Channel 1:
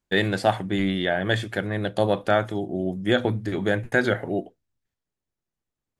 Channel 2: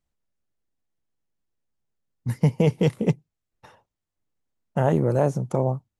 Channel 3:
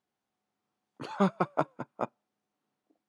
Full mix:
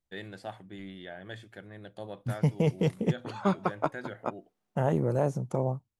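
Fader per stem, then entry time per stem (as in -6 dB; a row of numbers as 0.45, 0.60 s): -19.5, -6.0, -0.5 dB; 0.00, 0.00, 2.25 s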